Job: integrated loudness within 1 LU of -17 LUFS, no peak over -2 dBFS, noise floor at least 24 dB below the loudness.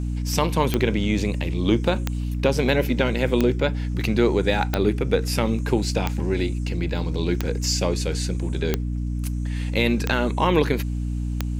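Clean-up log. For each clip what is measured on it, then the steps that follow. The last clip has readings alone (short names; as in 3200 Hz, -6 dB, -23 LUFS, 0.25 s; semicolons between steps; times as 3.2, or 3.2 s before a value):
clicks 9; hum 60 Hz; harmonics up to 300 Hz; hum level -23 dBFS; loudness -23.5 LUFS; peak -4.0 dBFS; loudness target -17.0 LUFS
-> de-click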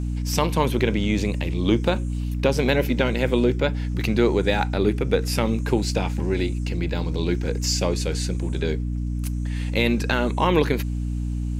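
clicks 0; hum 60 Hz; harmonics up to 300 Hz; hum level -23 dBFS
-> de-hum 60 Hz, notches 5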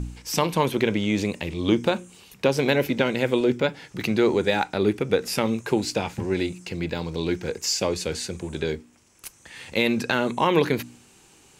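hum none; loudness -24.5 LUFS; peak -5.0 dBFS; loudness target -17.0 LUFS
-> gain +7.5 dB; limiter -2 dBFS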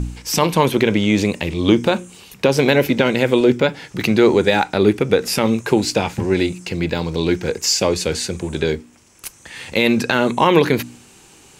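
loudness -17.5 LUFS; peak -2.0 dBFS; noise floor -48 dBFS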